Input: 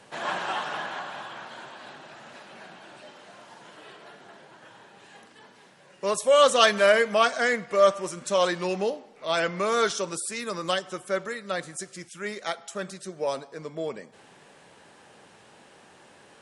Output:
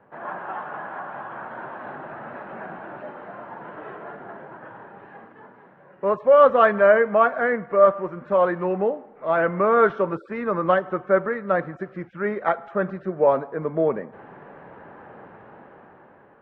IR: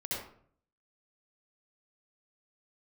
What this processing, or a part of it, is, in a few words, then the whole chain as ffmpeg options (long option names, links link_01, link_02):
action camera in a waterproof case: -af "lowpass=frequency=1600:width=0.5412,lowpass=frequency=1600:width=1.3066,dynaudnorm=framelen=410:gausssize=7:maxgain=13.5dB,volume=-2dB" -ar 48000 -c:a aac -b:a 48k